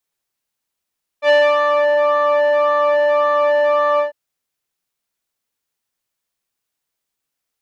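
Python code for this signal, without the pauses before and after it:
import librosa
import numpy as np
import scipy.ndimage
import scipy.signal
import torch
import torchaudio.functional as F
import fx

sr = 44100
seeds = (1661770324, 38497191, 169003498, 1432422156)

y = fx.sub_patch_pwm(sr, seeds[0], note=74, wave2='triangle', interval_st=7, detune_cents=7, level2_db=-10.5, sub_db=-27.5, noise_db=-21, kind='lowpass', cutoff_hz=1300.0, q=1.2, env_oct=1.0, env_decay_s=0.72, env_sustain_pct=15, attack_ms=74.0, decay_s=0.26, sustain_db=-4.0, release_s=0.13, note_s=2.77, lfo_hz=1.8, width_pct=37, width_swing_pct=15)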